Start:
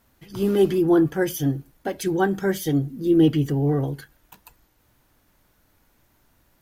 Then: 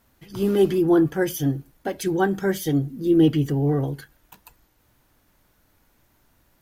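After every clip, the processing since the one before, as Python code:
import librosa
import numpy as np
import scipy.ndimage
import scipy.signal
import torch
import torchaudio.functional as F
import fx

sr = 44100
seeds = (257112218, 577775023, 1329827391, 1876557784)

y = x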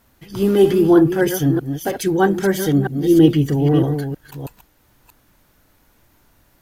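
y = fx.reverse_delay(x, sr, ms=319, wet_db=-7.5)
y = F.gain(torch.from_numpy(y), 5.0).numpy()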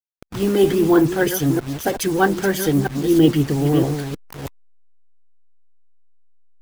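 y = fx.delta_hold(x, sr, step_db=-29.5)
y = fx.hpss(y, sr, part='percussive', gain_db=6)
y = F.gain(torch.from_numpy(y), -3.0).numpy()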